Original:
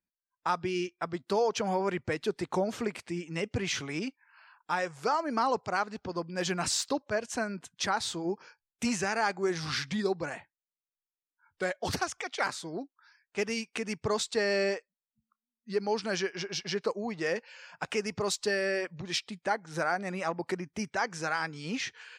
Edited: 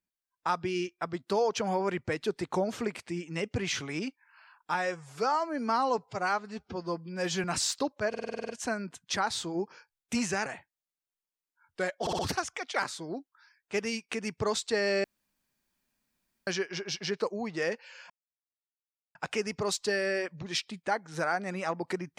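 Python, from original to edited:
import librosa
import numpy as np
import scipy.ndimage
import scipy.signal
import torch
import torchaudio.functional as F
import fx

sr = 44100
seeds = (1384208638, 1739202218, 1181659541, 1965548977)

y = fx.edit(x, sr, fx.stretch_span(start_s=4.74, length_s=1.8, factor=1.5),
    fx.stutter(start_s=7.19, slice_s=0.05, count=9),
    fx.cut(start_s=9.16, length_s=1.12),
    fx.stutter(start_s=11.83, slice_s=0.06, count=4),
    fx.room_tone_fill(start_s=14.68, length_s=1.43),
    fx.insert_silence(at_s=17.74, length_s=1.05), tone=tone)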